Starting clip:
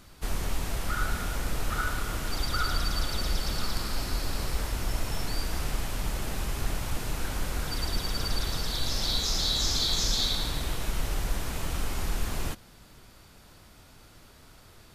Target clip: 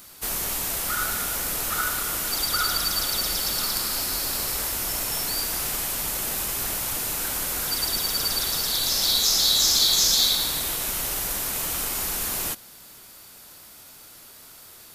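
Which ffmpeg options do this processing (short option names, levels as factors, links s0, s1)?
-af "aeval=exprs='0.211*(cos(1*acos(clip(val(0)/0.211,-1,1)))-cos(1*PI/2))+0.00596*(cos(3*acos(clip(val(0)/0.211,-1,1)))-cos(3*PI/2))':c=same,aemphasis=mode=production:type=bsi,volume=1.58"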